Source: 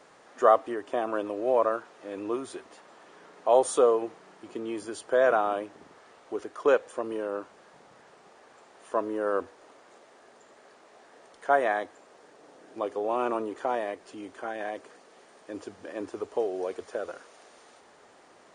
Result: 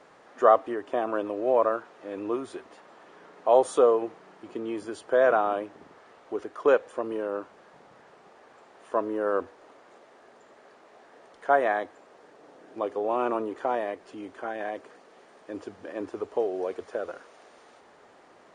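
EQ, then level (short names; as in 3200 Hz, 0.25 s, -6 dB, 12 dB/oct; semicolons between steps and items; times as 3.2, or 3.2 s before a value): high shelf 5000 Hz -10.5 dB; +1.5 dB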